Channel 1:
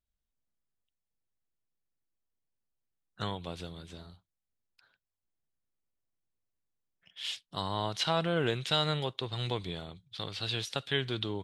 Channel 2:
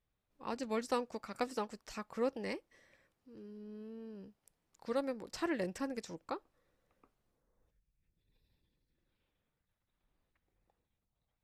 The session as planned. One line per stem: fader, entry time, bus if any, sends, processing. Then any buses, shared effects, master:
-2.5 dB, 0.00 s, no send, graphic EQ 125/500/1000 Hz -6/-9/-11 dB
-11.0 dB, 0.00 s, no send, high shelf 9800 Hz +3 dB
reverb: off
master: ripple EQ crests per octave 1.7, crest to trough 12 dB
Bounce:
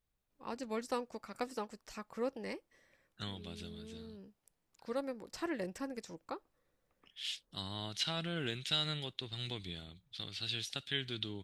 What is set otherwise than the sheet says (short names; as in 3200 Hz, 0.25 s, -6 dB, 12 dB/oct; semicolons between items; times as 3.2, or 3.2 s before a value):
stem 2 -11.0 dB -> -2.5 dB; master: missing ripple EQ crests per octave 1.7, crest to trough 12 dB